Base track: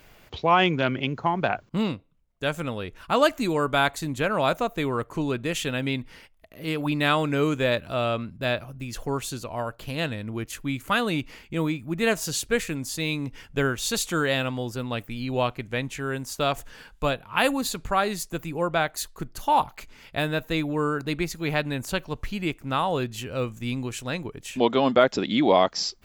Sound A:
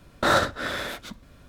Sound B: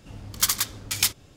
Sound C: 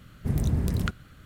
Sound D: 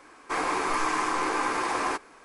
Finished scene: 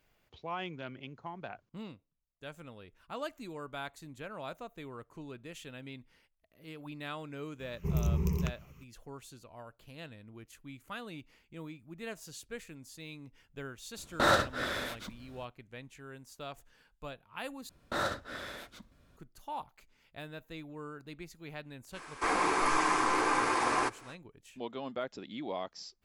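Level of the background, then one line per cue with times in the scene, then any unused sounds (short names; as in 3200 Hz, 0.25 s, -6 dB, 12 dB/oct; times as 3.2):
base track -19 dB
7.59 add C -9 dB + ripple EQ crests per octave 0.77, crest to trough 18 dB
13.97 add A -5 dB
17.69 replace with A -12.5 dB
21.92 add D -1.5 dB, fades 0.05 s + mismatched tape noise reduction encoder only
not used: B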